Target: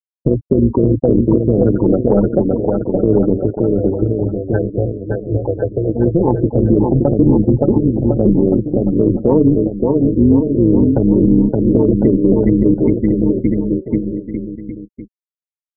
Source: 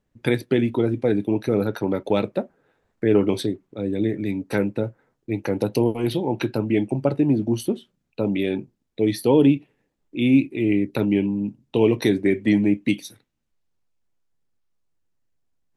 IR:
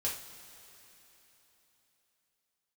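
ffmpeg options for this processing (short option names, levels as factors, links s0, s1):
-filter_complex "[0:a]acrossover=split=1400|4100[s0][s1][s2];[s0]acompressor=threshold=0.0794:ratio=4[s3];[s1]acompressor=threshold=0.00562:ratio=4[s4];[s2]acompressor=threshold=0.00251:ratio=4[s5];[s3][s4][s5]amix=inputs=3:normalize=0,asplit=3[s6][s7][s8];[s6]afade=t=out:st=3.47:d=0.02[s9];[s7]equalizer=f=240:w=1.5:g=-15,afade=t=in:st=3.47:d=0.02,afade=t=out:st=5.88:d=0.02[s10];[s8]afade=t=in:st=5.88:d=0.02[s11];[s9][s10][s11]amix=inputs=3:normalize=0,afftfilt=real='re*gte(hypot(re,im),0.1)':imag='im*gte(hypot(re,im),0.1)':win_size=1024:overlap=0.75,aecho=1:1:570|1054|1466|1816|2114:0.631|0.398|0.251|0.158|0.1,tremolo=f=170:d=0.571,acontrast=58,lowshelf=f=130:g=7,alimiter=level_in=2.99:limit=0.891:release=50:level=0:latency=1,volume=0.891"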